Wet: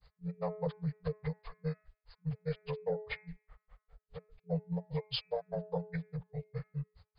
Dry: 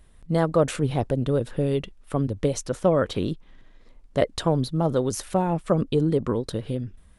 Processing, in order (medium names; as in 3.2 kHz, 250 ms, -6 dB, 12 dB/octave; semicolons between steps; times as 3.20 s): frequency axis rescaled in octaves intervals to 79%; granulator 115 ms, grains 4.9 per s, spray 37 ms, pitch spread up and down by 0 st; de-hum 213 Hz, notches 12; peak limiter -22.5 dBFS, peak gain reduction 9 dB; FFT band-reject 180–430 Hz